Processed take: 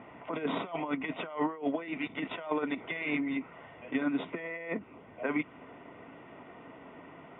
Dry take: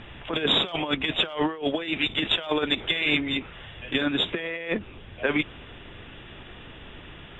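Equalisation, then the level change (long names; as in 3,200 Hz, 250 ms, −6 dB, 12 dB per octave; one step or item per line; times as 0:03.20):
dynamic equaliser 560 Hz, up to −6 dB, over −39 dBFS, Q 0.72
Butterworth band-reject 1,700 Hz, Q 6.2
loudspeaker in its box 160–2,200 Hz, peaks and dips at 170 Hz +4 dB, 270 Hz +9 dB, 460 Hz +5 dB, 670 Hz +10 dB, 1,000 Hz +9 dB, 1,900 Hz +6 dB
−8.0 dB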